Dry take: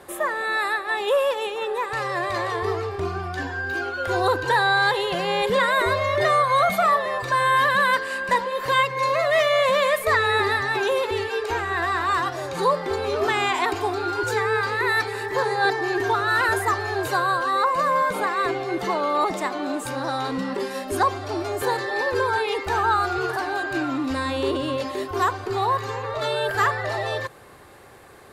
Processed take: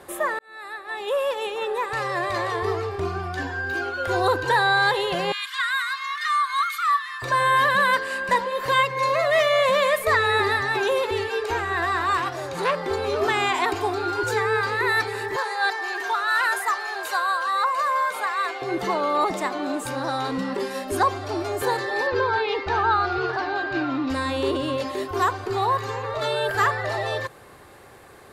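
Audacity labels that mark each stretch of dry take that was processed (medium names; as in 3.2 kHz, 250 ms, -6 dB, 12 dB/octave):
0.390000	1.570000	fade in
5.320000	7.220000	rippled Chebyshev high-pass 1.1 kHz, ripple 3 dB
12.170000	12.780000	transformer saturation saturates under 1.5 kHz
15.360000	18.620000	high-pass 800 Hz
22.070000	24.100000	low-pass 5.1 kHz 24 dB/octave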